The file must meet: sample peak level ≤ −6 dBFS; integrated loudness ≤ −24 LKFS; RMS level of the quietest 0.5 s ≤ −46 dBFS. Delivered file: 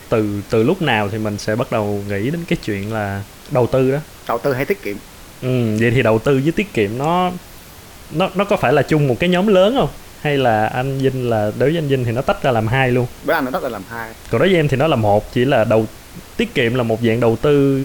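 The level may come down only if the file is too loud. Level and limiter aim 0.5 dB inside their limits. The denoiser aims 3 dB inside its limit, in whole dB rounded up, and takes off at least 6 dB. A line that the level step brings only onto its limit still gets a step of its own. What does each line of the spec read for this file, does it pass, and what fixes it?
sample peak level −3.5 dBFS: out of spec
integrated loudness −17.5 LKFS: out of spec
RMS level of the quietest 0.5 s −38 dBFS: out of spec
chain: broadband denoise 6 dB, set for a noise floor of −38 dBFS
level −7 dB

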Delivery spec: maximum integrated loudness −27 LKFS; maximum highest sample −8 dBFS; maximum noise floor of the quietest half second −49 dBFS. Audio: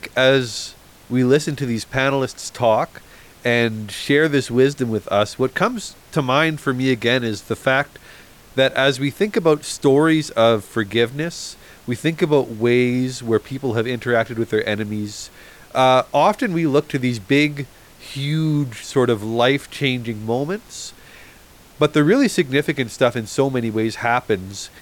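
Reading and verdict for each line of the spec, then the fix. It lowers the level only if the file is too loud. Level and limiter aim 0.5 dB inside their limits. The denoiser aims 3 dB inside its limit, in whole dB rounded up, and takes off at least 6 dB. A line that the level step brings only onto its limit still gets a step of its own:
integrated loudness −19.0 LKFS: out of spec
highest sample −4.5 dBFS: out of spec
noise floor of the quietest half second −46 dBFS: out of spec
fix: level −8.5 dB

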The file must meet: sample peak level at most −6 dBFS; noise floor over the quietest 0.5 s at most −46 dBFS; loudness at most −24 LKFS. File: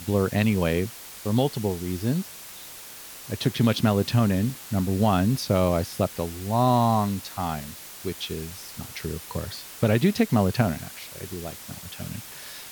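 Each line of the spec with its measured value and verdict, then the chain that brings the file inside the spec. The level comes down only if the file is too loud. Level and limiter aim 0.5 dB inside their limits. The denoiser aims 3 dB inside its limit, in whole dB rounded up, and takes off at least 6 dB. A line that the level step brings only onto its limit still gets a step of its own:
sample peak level −9.0 dBFS: in spec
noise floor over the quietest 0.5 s −42 dBFS: out of spec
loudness −25.5 LKFS: in spec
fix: broadband denoise 7 dB, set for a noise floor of −42 dBFS

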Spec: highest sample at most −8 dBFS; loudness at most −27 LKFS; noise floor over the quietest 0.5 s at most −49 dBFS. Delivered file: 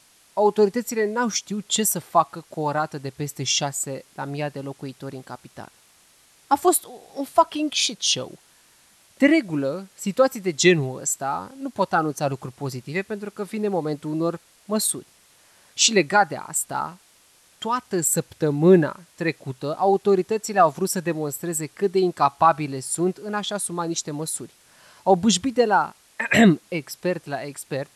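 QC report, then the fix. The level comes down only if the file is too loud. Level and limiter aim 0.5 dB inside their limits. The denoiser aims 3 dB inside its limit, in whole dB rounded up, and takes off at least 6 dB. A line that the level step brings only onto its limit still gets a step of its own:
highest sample −5.0 dBFS: out of spec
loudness −22.5 LKFS: out of spec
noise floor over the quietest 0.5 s −57 dBFS: in spec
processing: level −5 dB

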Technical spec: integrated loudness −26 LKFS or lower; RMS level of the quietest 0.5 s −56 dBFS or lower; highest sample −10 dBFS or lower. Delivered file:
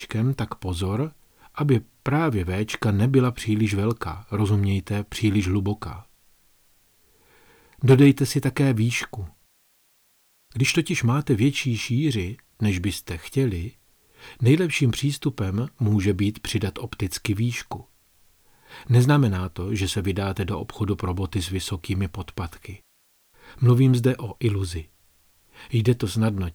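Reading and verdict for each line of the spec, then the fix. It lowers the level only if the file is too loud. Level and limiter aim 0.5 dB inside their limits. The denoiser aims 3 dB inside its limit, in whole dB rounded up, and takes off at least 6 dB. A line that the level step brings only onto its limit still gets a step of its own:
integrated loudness −23.5 LKFS: out of spec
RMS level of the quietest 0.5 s −63 dBFS: in spec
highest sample −7.0 dBFS: out of spec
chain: level −3 dB
brickwall limiter −10.5 dBFS

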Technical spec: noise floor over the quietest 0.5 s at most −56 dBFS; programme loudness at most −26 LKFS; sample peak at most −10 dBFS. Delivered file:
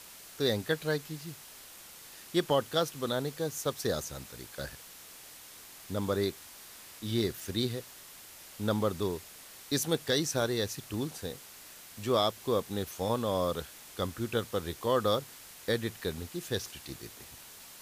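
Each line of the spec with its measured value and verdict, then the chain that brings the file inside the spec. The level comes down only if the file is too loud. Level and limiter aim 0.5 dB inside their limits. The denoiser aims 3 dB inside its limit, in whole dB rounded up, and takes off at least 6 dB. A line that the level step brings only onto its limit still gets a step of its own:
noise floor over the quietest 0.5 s −51 dBFS: out of spec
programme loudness −33.0 LKFS: in spec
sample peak −15.0 dBFS: in spec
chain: broadband denoise 8 dB, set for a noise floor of −51 dBFS

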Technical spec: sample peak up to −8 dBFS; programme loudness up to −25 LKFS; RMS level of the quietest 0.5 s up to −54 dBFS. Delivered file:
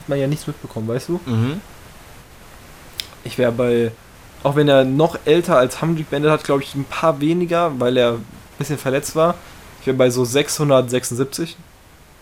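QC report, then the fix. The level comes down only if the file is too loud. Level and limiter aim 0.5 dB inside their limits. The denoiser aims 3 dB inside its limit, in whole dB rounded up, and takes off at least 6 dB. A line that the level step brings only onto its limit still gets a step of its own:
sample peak −3.0 dBFS: out of spec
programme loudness −18.5 LKFS: out of spec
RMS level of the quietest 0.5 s −46 dBFS: out of spec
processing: broadband denoise 6 dB, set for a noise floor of −46 dBFS
level −7 dB

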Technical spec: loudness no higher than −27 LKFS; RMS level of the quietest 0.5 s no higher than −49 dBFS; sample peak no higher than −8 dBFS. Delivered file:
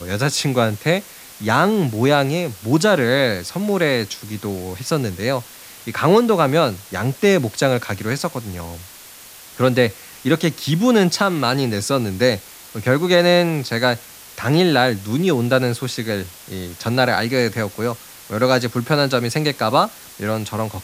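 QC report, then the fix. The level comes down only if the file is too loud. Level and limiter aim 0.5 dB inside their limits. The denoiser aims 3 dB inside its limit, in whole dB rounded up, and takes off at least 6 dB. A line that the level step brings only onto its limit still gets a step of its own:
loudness −19.0 LKFS: out of spec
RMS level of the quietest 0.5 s −41 dBFS: out of spec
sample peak −2.5 dBFS: out of spec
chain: level −8.5 dB

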